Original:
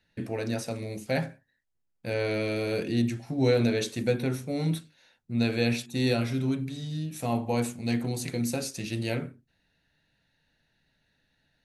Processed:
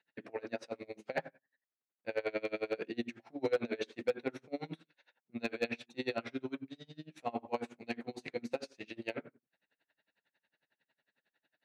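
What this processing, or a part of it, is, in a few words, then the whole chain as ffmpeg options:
helicopter radio: -af "highpass=380,lowpass=2800,aeval=exprs='val(0)*pow(10,-29*(0.5-0.5*cos(2*PI*11*n/s))/20)':c=same,asoftclip=type=hard:threshold=0.0596,volume=1.12"

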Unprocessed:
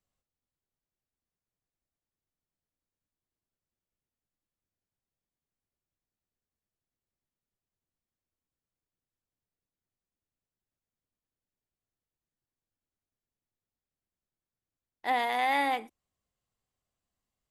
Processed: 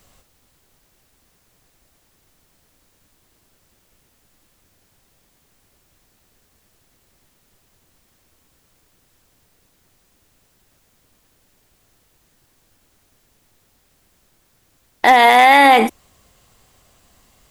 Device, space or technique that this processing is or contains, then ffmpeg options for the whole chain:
mastering chain: -af "equalizer=f=150:t=o:w=1.8:g=-2,acompressor=threshold=0.0316:ratio=3,asoftclip=type=hard:threshold=0.0596,alimiter=level_in=50.1:limit=0.891:release=50:level=0:latency=1,volume=0.891"

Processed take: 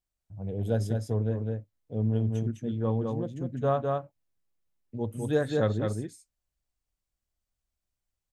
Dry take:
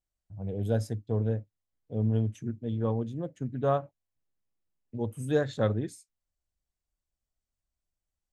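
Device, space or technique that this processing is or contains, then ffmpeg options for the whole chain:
ducked delay: -filter_complex "[0:a]asplit=3[s0][s1][s2];[s1]adelay=206,volume=0.708[s3];[s2]apad=whole_len=376413[s4];[s3][s4]sidechaincompress=threshold=0.0355:ratio=8:attack=9.2:release=112[s5];[s0][s5]amix=inputs=2:normalize=0"

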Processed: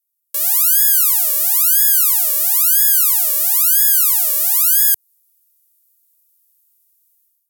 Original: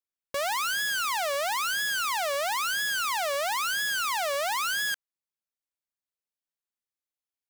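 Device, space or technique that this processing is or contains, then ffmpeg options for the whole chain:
FM broadcast chain: -filter_complex "[0:a]highpass=79,dynaudnorm=f=400:g=3:m=6.31,acrossover=split=450|3300[s0][s1][s2];[s0]acompressor=threshold=0.02:ratio=4[s3];[s1]acompressor=threshold=0.0398:ratio=4[s4];[s2]acompressor=threshold=0.0794:ratio=4[s5];[s3][s4][s5]amix=inputs=3:normalize=0,aemphasis=mode=production:type=75fm,alimiter=limit=1:level=0:latency=1,asoftclip=type=hard:threshold=0.75,lowpass=f=15000:w=0.5412,lowpass=f=15000:w=1.3066,aemphasis=mode=production:type=75fm,volume=0.266"

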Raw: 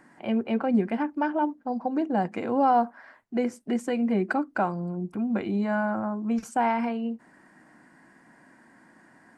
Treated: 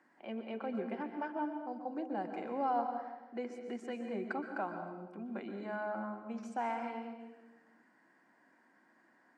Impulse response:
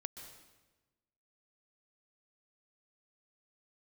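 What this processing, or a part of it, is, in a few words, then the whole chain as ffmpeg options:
supermarket ceiling speaker: -filter_complex "[0:a]highpass=280,lowpass=6000[s0];[1:a]atrim=start_sample=2205[s1];[s0][s1]afir=irnorm=-1:irlink=0,volume=0.398"

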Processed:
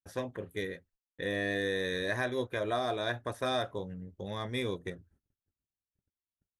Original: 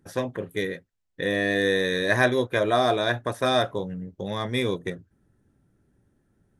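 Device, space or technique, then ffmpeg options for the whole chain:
car stereo with a boomy subwoofer: -af "lowshelf=f=100:t=q:w=1.5:g=6,alimiter=limit=0.224:level=0:latency=1:release=187,agate=range=0.0141:threshold=0.00141:ratio=16:detection=peak,volume=0.398"

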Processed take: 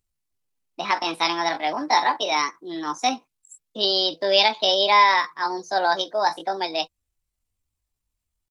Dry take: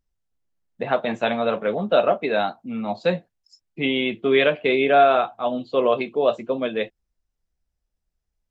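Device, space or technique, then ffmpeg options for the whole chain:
chipmunk voice: -af "asetrate=64194,aresample=44100,atempo=0.686977,highshelf=f=2100:g=11,volume=0.668"

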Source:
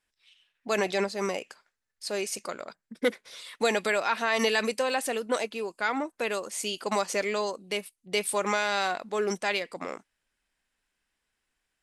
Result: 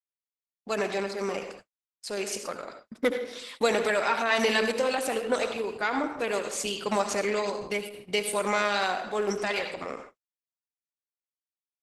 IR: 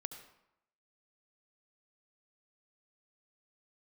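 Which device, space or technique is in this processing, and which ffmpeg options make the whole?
speakerphone in a meeting room: -filter_complex "[0:a]asplit=3[s0][s1][s2];[s0]afade=t=out:st=6.37:d=0.02[s3];[s1]adynamicequalizer=threshold=0.00282:dfrequency=110:dqfactor=0.89:tfrequency=110:tqfactor=0.89:attack=5:release=100:ratio=0.375:range=2.5:mode=boostabove:tftype=bell,afade=t=in:st=6.37:d=0.02,afade=t=out:st=8.16:d=0.02[s4];[s2]afade=t=in:st=8.16:d=0.02[s5];[s3][s4][s5]amix=inputs=3:normalize=0[s6];[1:a]atrim=start_sample=2205[s7];[s6][s7]afir=irnorm=-1:irlink=0,dynaudnorm=f=350:g=11:m=1.41,agate=range=0.00126:threshold=0.00501:ratio=16:detection=peak,volume=1.19" -ar 48000 -c:a libopus -b:a 12k

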